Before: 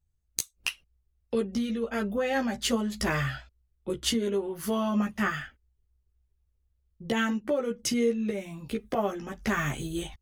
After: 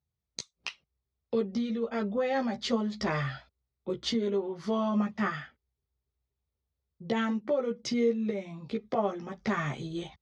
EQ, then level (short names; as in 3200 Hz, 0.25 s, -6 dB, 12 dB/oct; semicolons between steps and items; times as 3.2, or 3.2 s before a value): speaker cabinet 130–5000 Hz, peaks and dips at 300 Hz -5 dB, 1600 Hz -7 dB, 2800 Hz -9 dB; 0.0 dB